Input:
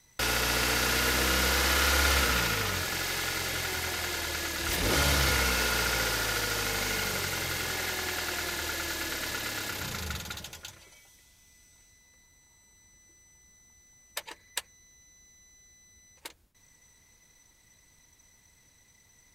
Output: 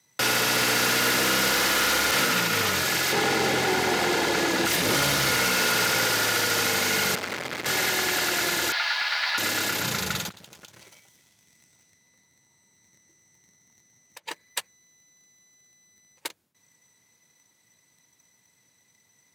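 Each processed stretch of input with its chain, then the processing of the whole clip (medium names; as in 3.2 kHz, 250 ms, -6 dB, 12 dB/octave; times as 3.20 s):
2.11–2.53 s: expander -25 dBFS + resonant low shelf 110 Hz -9.5 dB, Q 1.5
3.12–4.66 s: treble shelf 9.6 kHz -10.5 dB + small resonant body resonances 240/420/790 Hz, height 10 dB, ringing for 20 ms
7.15–7.66 s: low-pass 2.3 kHz 6 dB/octave + transformer saturation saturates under 2 kHz
8.72–9.38 s: elliptic band-pass 770–4700 Hz + doubling 12 ms -4 dB
10.29–14.28 s: bass shelf 320 Hz +5.5 dB + compression 16:1, threshold -47 dBFS + loudspeaker Doppler distortion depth 0.42 ms
whole clip: waveshaping leveller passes 2; peak limiter -17.5 dBFS; high-pass 120 Hz 24 dB/octave; trim +1.5 dB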